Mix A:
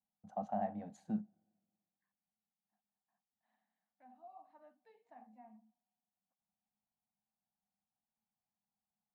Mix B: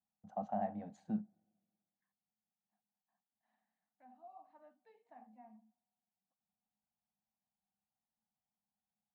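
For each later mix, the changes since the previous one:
master: add high-frequency loss of the air 65 metres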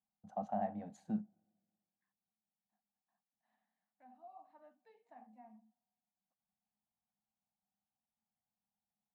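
master: remove high-frequency loss of the air 65 metres

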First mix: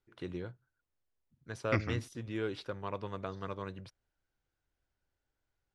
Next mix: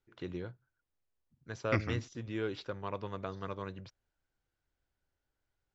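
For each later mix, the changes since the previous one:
first voice: add linear-phase brick-wall low-pass 7,700 Hz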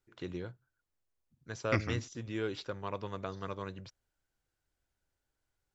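master: remove high-frequency loss of the air 87 metres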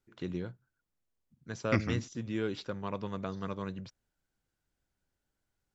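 master: add parametric band 200 Hz +8 dB 0.88 octaves

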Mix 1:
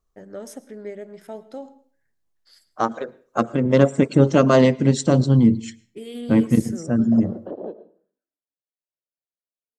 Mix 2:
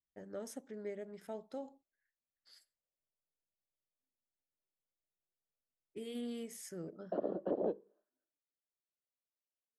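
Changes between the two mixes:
first voice −6.5 dB
second voice: muted
reverb: off

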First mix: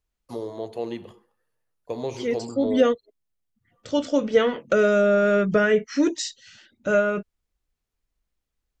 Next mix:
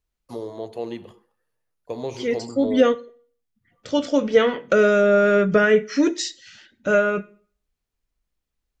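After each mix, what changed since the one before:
reverb: on, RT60 0.45 s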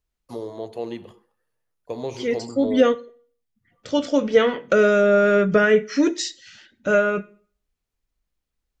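nothing changed

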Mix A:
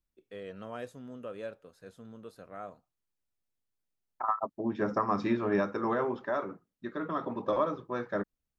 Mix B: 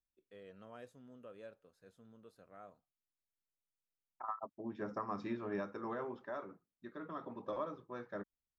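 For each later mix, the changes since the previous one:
first voice −12.0 dB
second voice −11.5 dB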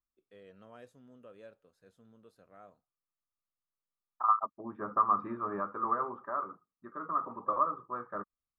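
second voice: add low-pass with resonance 1,200 Hz, resonance Q 10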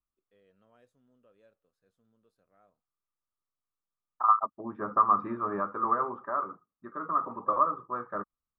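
first voice −11.0 dB
second voice +4.0 dB

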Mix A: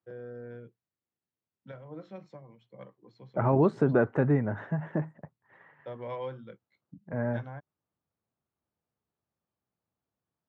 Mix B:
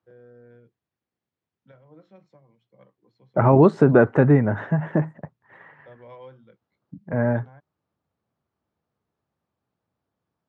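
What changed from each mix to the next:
first voice −7.0 dB
second voice +9.0 dB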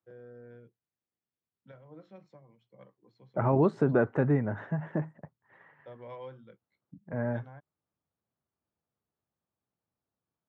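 second voice −10.0 dB

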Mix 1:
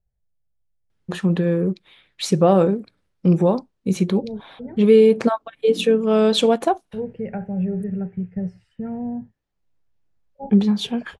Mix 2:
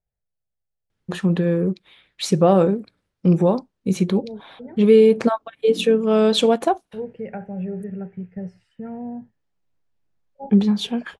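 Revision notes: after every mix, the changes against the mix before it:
second voice: add low-shelf EQ 180 Hz −11.5 dB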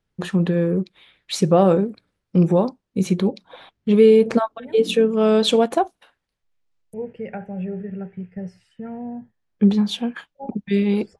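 first voice: entry −0.90 s
second voice: add high-shelf EQ 2,700 Hz +9.5 dB

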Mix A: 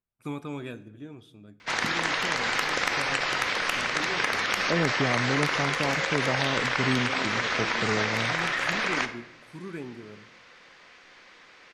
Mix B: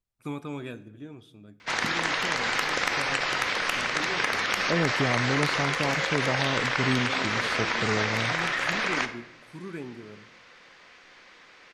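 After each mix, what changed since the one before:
second voice: remove band-pass filter 100–2,300 Hz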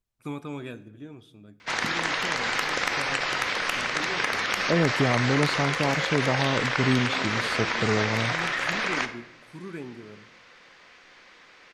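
second voice +3.5 dB

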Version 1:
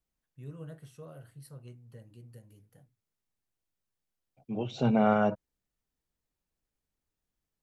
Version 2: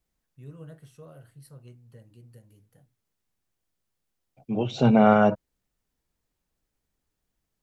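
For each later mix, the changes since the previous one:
second voice +7.0 dB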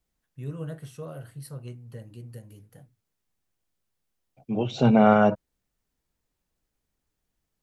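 first voice +9.0 dB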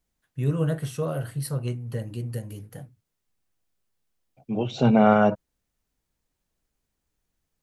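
first voice +10.5 dB

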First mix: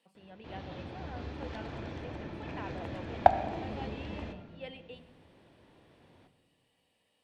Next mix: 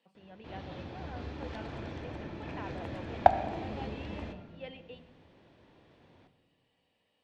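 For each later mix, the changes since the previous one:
first voice: add high-frequency loss of the air 91 metres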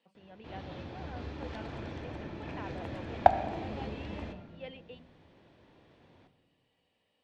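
first voice: send off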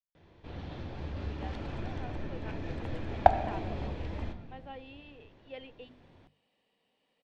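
first voice: entry +0.90 s
second voice: send off
master: remove high-pass filter 120 Hz 6 dB per octave

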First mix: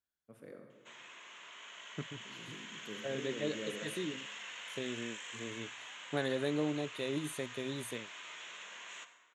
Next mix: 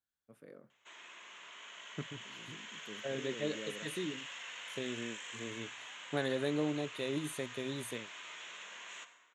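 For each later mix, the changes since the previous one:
first voice: send off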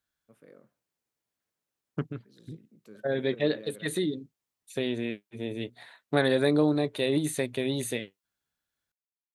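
second voice +10.5 dB
background: muted
reverb: off

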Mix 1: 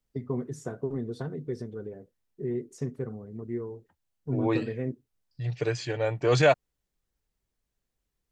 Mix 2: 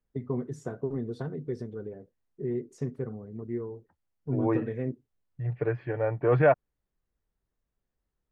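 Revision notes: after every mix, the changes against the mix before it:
second voice: add low-pass filter 1,900 Hz 24 dB per octave
master: add high-shelf EQ 4,300 Hz −8 dB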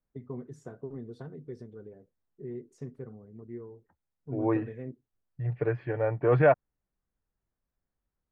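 first voice −8.0 dB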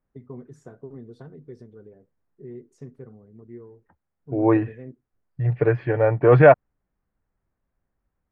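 second voice +9.0 dB

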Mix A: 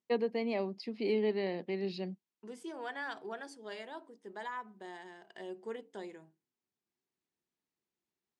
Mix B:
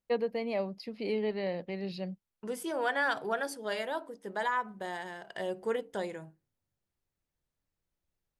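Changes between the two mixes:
second voice +9.0 dB
master: remove loudspeaker in its box 200–8,600 Hz, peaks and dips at 230 Hz +4 dB, 370 Hz +6 dB, 550 Hz −7 dB, 1,400 Hz −4 dB

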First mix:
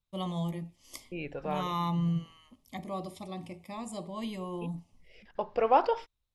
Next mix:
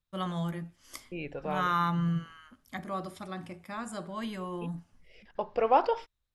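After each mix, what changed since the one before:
first voice: remove Butterworth band-reject 1,500 Hz, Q 1.5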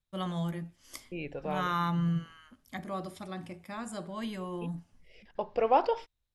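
master: add parametric band 1,300 Hz −4 dB 0.86 octaves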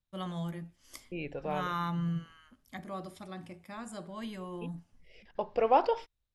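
first voice −3.5 dB

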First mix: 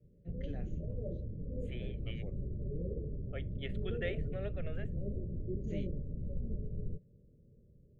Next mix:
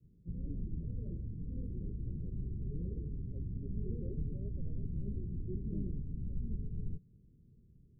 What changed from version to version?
master: add inverse Chebyshev band-stop filter 1,000–5,800 Hz, stop band 60 dB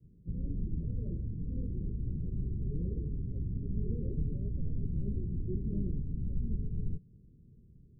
background +4.5 dB

